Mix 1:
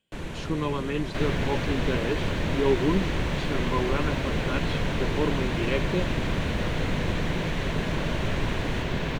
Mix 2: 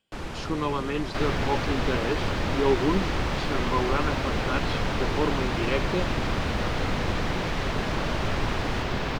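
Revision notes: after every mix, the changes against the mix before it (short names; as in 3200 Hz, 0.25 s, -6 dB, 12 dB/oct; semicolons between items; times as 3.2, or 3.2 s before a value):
master: add thirty-one-band EQ 160 Hz -5 dB, 800 Hz +6 dB, 1250 Hz +7 dB, 5000 Hz +8 dB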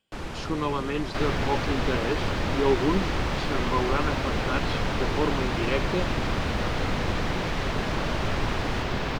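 none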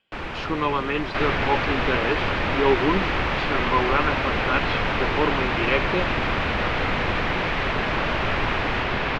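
master: add EQ curve 180 Hz 0 dB, 2500 Hz +9 dB, 8800 Hz -12 dB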